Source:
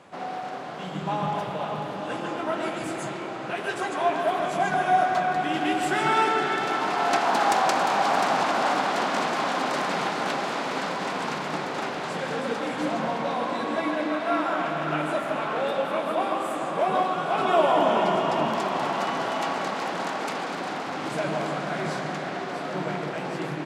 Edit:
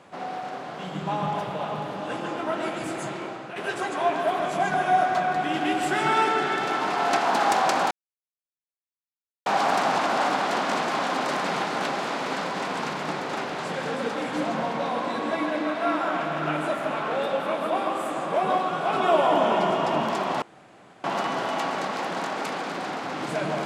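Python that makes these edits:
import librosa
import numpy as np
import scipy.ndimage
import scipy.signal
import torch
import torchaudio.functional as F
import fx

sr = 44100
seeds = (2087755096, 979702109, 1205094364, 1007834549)

y = fx.edit(x, sr, fx.fade_out_to(start_s=3.25, length_s=0.31, floor_db=-9.0),
    fx.insert_silence(at_s=7.91, length_s=1.55),
    fx.insert_room_tone(at_s=18.87, length_s=0.62), tone=tone)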